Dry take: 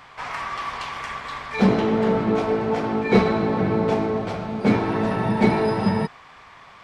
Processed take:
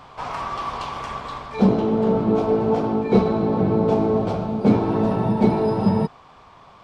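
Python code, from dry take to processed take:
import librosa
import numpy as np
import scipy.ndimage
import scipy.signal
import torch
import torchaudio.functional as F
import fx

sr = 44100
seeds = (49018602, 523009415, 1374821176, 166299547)

y = fx.peak_eq(x, sr, hz=1900.0, db=-13.0, octaves=0.93)
y = fx.rider(y, sr, range_db=4, speed_s=0.5)
y = fx.high_shelf(y, sr, hz=3700.0, db=-9.5)
y = F.gain(torch.from_numpy(y), 2.5).numpy()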